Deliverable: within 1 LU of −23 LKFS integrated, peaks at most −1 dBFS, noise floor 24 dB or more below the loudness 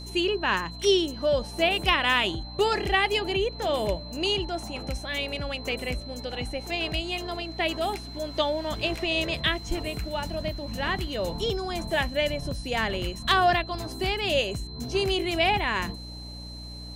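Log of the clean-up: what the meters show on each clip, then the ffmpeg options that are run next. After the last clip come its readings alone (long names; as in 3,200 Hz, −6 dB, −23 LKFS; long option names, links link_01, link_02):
mains hum 60 Hz; hum harmonics up to 300 Hz; level of the hum −39 dBFS; interfering tone 4,100 Hz; level of the tone −42 dBFS; integrated loudness −27.0 LKFS; sample peak −9.5 dBFS; target loudness −23.0 LKFS
→ -af "bandreject=frequency=60:width_type=h:width=4,bandreject=frequency=120:width_type=h:width=4,bandreject=frequency=180:width_type=h:width=4,bandreject=frequency=240:width_type=h:width=4,bandreject=frequency=300:width_type=h:width=4"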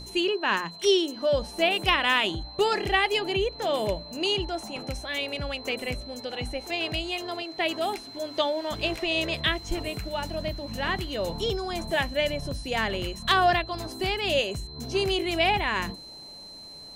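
mains hum none found; interfering tone 4,100 Hz; level of the tone −42 dBFS
→ -af "bandreject=frequency=4100:width=30"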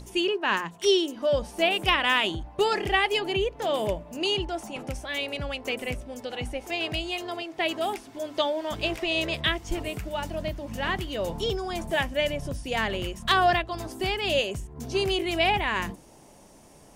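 interfering tone none found; integrated loudness −27.0 LKFS; sample peak −9.5 dBFS; target loudness −23.0 LKFS
→ -af "volume=4dB"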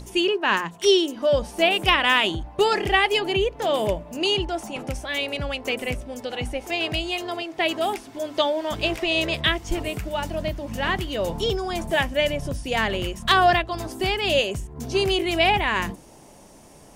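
integrated loudness −23.0 LKFS; sample peak −5.5 dBFS; background noise floor −48 dBFS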